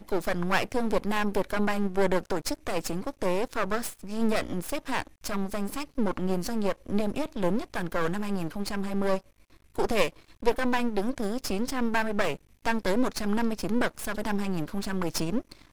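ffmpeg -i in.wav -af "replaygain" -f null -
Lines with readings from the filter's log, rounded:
track_gain = +10.3 dB
track_peak = 0.298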